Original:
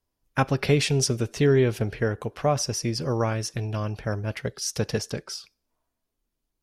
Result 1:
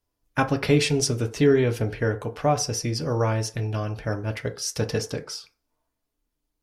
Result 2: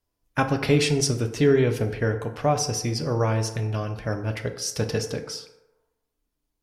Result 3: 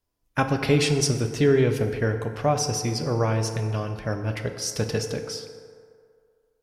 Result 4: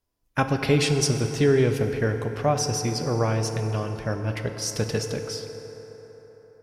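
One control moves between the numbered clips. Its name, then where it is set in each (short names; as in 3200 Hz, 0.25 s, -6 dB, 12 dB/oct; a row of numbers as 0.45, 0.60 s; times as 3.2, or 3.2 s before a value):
FDN reverb, RT60: 0.37, 1, 2.2, 4.6 s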